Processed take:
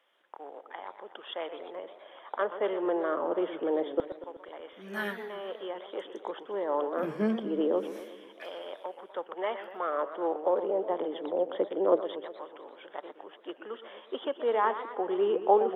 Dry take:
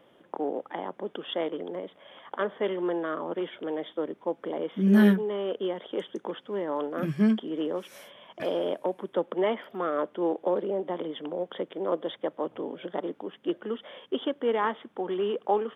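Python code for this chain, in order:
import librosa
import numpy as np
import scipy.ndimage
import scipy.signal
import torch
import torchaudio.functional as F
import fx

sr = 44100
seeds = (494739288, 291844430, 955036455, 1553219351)

y = fx.filter_lfo_highpass(x, sr, shape='saw_down', hz=0.25, low_hz=370.0, high_hz=1900.0, q=0.79)
y = fx.tilt_shelf(y, sr, db=7.5, hz=1200.0)
y = fx.echo_warbled(y, sr, ms=122, feedback_pct=60, rate_hz=2.8, cents=185, wet_db=-12)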